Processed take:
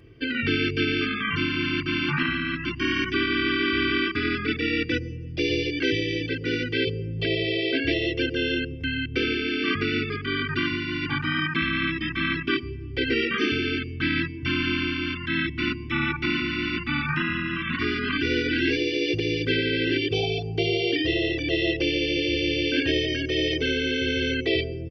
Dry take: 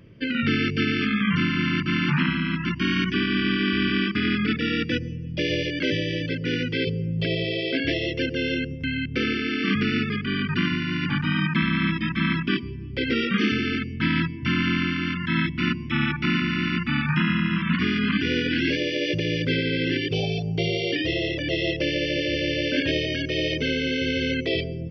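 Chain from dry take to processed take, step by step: comb 2.6 ms, depth 85%; gain -2 dB

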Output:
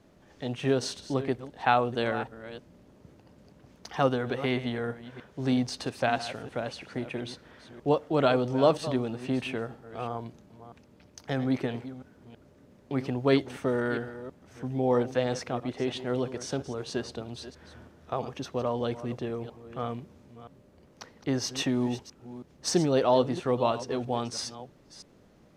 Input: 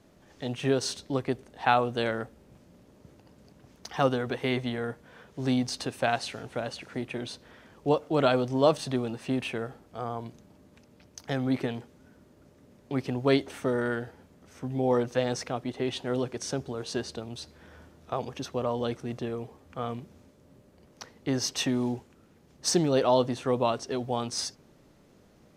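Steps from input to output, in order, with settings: reverse delay 0.325 s, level -13.5 dB; high shelf 5600 Hz -6 dB

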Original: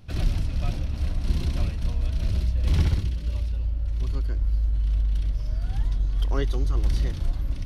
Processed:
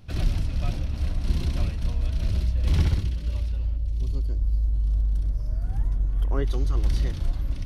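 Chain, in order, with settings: 3.76–6.45 bell 1300 Hz -> 4900 Hz -14.5 dB 1.6 oct

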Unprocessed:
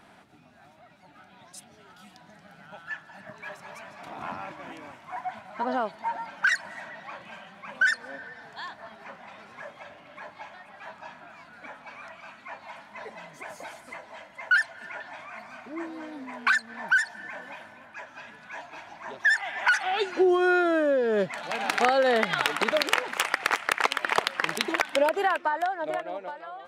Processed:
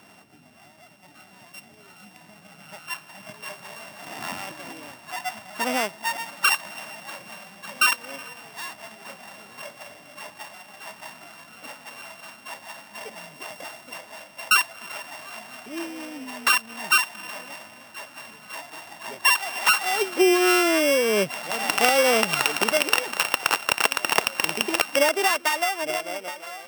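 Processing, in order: sample sorter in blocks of 16 samples; HPF 88 Hz; gain +3 dB

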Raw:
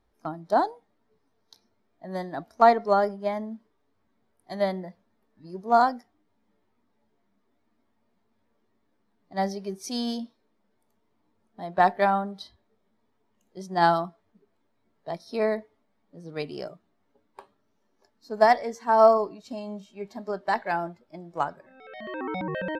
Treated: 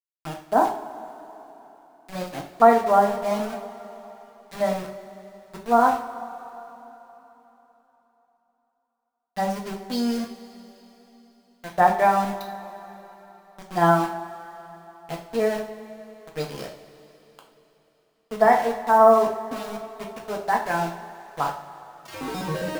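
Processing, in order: envelope phaser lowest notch 430 Hz, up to 4600 Hz, full sweep at -24.5 dBFS; sample gate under -34 dBFS; two-slope reverb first 0.41 s, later 3.8 s, from -18 dB, DRR 0 dB; gain +1 dB

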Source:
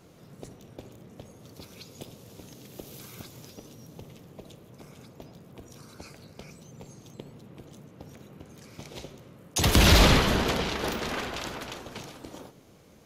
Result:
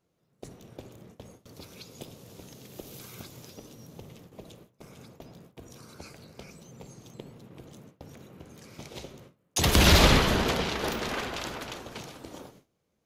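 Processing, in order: notches 50/100/150/200/250/300 Hz; gate with hold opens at -40 dBFS

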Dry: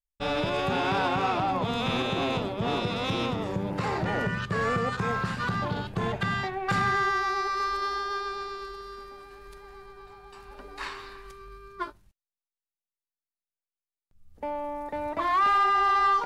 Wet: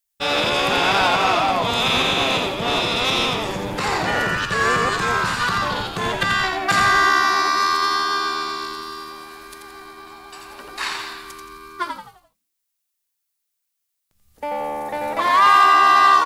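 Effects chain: tilt +3 dB/oct; on a send: frequency-shifting echo 86 ms, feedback 41%, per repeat -77 Hz, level -5 dB; on the sum: gain +7.5 dB

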